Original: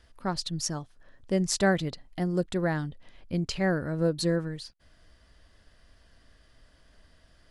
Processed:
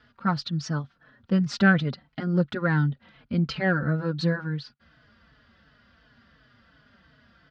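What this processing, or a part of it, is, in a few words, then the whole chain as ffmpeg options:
barber-pole flanger into a guitar amplifier: -filter_complex "[0:a]asplit=2[link_01][link_02];[link_02]adelay=4.2,afreqshift=-2.8[link_03];[link_01][link_03]amix=inputs=2:normalize=1,asoftclip=type=tanh:threshold=-16dB,highpass=86,equalizer=frequency=140:width_type=q:width=4:gain=7,equalizer=frequency=230:width_type=q:width=4:gain=9,equalizer=frequency=350:width_type=q:width=4:gain=-5,equalizer=frequency=620:width_type=q:width=4:gain=-3,equalizer=frequency=1400:width_type=q:width=4:gain=10,lowpass=frequency=4400:width=0.5412,lowpass=frequency=4400:width=1.3066,volume=5.5dB"

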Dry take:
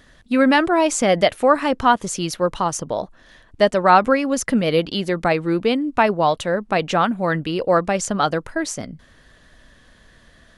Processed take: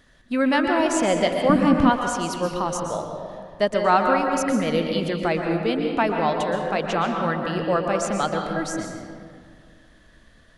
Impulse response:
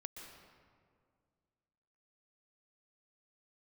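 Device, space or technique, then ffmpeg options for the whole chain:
stairwell: -filter_complex "[1:a]atrim=start_sample=2205[link_01];[0:a][link_01]afir=irnorm=-1:irlink=0,asettb=1/sr,asplit=3[link_02][link_03][link_04];[link_02]atrim=end=1.494[link_05];[link_03]atrim=start=1.49:end=1.9,asetpts=PTS-STARTPTS,afade=type=in:duration=0.004:curve=qsin,afade=type=out:start_time=0.406:duration=0.004:curve=qsin,lowshelf=frequency=330:width_type=q:width=1.5:gain=12.5[link_06];[link_04]atrim=start=1.896[link_07];[link_05][link_06]acrossfade=duration=0.004:curve1=hsin:curve2=qsin[link_08];[link_08][link_07]acrossfade=duration=0.004:curve1=qsin:curve2=hsin"

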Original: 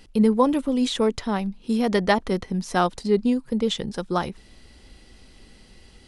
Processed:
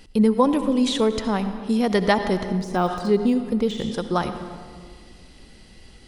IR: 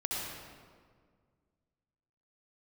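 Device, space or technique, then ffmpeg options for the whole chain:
ducked reverb: -filter_complex "[0:a]asplit=3[link_01][link_02][link_03];[1:a]atrim=start_sample=2205[link_04];[link_02][link_04]afir=irnorm=-1:irlink=0[link_05];[link_03]apad=whole_len=267917[link_06];[link_05][link_06]sidechaincompress=threshold=-22dB:ratio=8:attack=16:release=101,volume=-11dB[link_07];[link_01][link_07]amix=inputs=2:normalize=0,asettb=1/sr,asplit=3[link_08][link_09][link_10];[link_08]atrim=end=2.584[link_11];[link_09]atrim=start=2.58:end=3.92,asetpts=PTS-STARTPTS,afade=type=in:duration=0.004:curve=qsin,afade=type=out:start_time=1.336:duration=0.004:curve=qsin,deesser=0.9[link_12];[link_10]atrim=start=3.916[link_13];[link_11][link_12]acrossfade=duration=0.004:curve1=hsin:curve2=qsin[link_14];[link_14][link_13]acrossfade=duration=0.004:curve1=qsin:curve2=hsin"

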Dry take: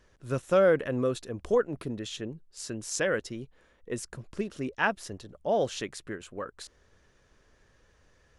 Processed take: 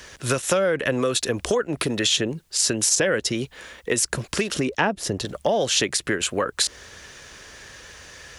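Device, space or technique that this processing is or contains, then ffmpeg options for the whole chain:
mastering chain: -filter_complex "[0:a]asettb=1/sr,asplit=3[link_01][link_02][link_03];[link_01]atrim=end=4.544[link_04];[link_02]atrim=start=4.54:end=5.25,asetpts=PTS-STARTPTS,afade=type=in:duration=0.004:curve=qsin,afade=type=out:start_time=0.706:duration=0.004:curve=qsin,tiltshelf=frequency=680:gain=7[link_05];[link_03]atrim=start=5.246[link_06];[link_04][link_05]acrossfade=duration=0.004:curve1=hsin:curve2=qsin[link_07];[link_07][link_06]acrossfade=duration=0.004:curve1=qsin:curve2=hsin,highpass=44,equalizer=frequency=1200:width_type=o:width=0.77:gain=-2.5,acrossover=split=320|760[link_08][link_09][link_10];[link_08]acompressor=threshold=-40dB:ratio=4[link_11];[link_09]acompressor=threshold=-37dB:ratio=4[link_12];[link_10]acompressor=threshold=-46dB:ratio=4[link_13];[link_11][link_12][link_13]amix=inputs=3:normalize=0,acompressor=threshold=-38dB:ratio=2.5,tiltshelf=frequency=970:gain=-7,alimiter=level_in=28.5dB:limit=-1dB:release=50:level=0:latency=1,volume=-7dB"

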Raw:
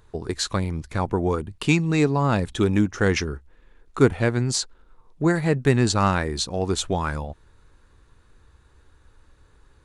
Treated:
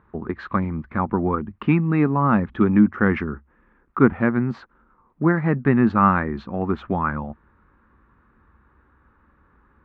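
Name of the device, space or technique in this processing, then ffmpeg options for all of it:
bass cabinet: -af "highpass=60,equalizer=frequency=76:width_type=q:width=4:gain=-4,equalizer=frequency=110:width_type=q:width=4:gain=-9,equalizer=frequency=220:width_type=q:width=4:gain=8,equalizer=frequency=450:width_type=q:width=4:gain=-6,equalizer=frequency=650:width_type=q:width=4:gain=-4,equalizer=frequency=1200:width_type=q:width=4:gain=6,lowpass=frequency=2000:width=0.5412,lowpass=frequency=2000:width=1.3066,volume=2dB"

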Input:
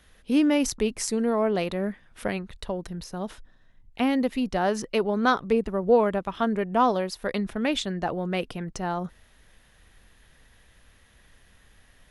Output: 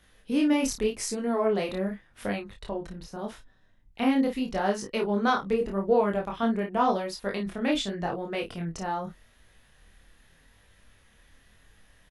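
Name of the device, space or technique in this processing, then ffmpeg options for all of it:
double-tracked vocal: -filter_complex "[0:a]asplit=2[link_01][link_02];[link_02]adelay=30,volume=-6dB[link_03];[link_01][link_03]amix=inputs=2:normalize=0,flanger=delay=19.5:depth=7:speed=0.84,asettb=1/sr,asplit=3[link_04][link_05][link_06];[link_04]atrim=end=2.574[link_07];[link_05]atrim=start=2.57:end=3.19,asetpts=PTS-STARTPTS,afade=type=in:duration=0.004:curve=qsin,afade=type=out:start_time=0.616:duration=0.004:curve=qsin,highshelf=frequency=4100:gain=-7.5[link_08];[link_06]atrim=start=3.186[link_09];[link_07][link_08]acrossfade=duration=0.004:curve1=hsin:curve2=qsin[link_10];[link_10][link_09]acrossfade=duration=0.004:curve1=qsin:curve2=hsin"

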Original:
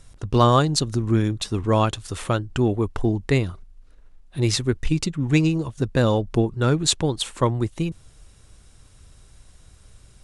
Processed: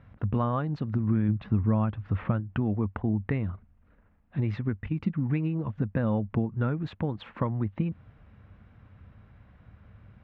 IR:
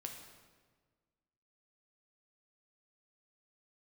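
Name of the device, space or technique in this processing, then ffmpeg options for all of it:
bass amplifier: -filter_complex "[0:a]asettb=1/sr,asplit=3[link_01][link_02][link_03];[link_01]atrim=end=1.284[link_04];[link_02]atrim=start=1.28:end=2.4,asetpts=PTS-STARTPTS,afade=type=in:duration=0.004:curve=qsin,afade=type=out:start_time=1.116:duration=0.004:curve=qsin,bass=frequency=250:gain=5,treble=frequency=4000:gain=-9[link_05];[link_03]atrim=start=2.396[link_06];[link_04][link_05]acrossfade=duration=0.004:curve1=hsin:curve2=qsin[link_07];[link_07][link_06]acrossfade=duration=0.004:curve1=qsin:curve2=hsin,acompressor=threshold=-26dB:ratio=5,highpass=71,equalizer=frequency=97:width_type=q:width=4:gain=7,equalizer=frequency=210:width_type=q:width=4:gain=9,equalizer=frequency=380:width_type=q:width=4:gain=-7,lowpass=frequency=2200:width=0.5412,lowpass=frequency=2200:width=1.3066"

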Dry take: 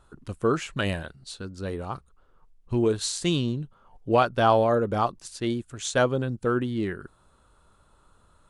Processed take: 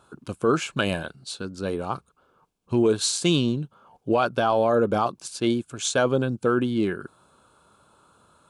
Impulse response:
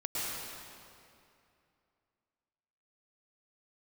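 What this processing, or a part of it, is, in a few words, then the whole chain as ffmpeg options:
PA system with an anti-feedback notch: -af "highpass=140,asuperstop=centerf=1900:order=4:qfactor=5.8,alimiter=limit=-16.5dB:level=0:latency=1:release=15,volume=5dB"

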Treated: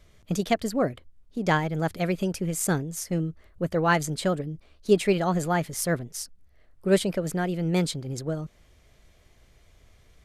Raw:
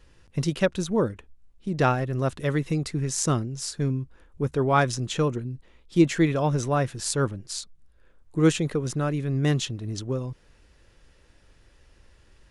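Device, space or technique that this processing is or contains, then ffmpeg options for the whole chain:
nightcore: -af "asetrate=53802,aresample=44100,volume=-1dB"

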